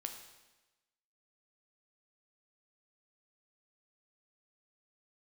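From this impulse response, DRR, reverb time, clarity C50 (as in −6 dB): 4.5 dB, 1.1 s, 7.0 dB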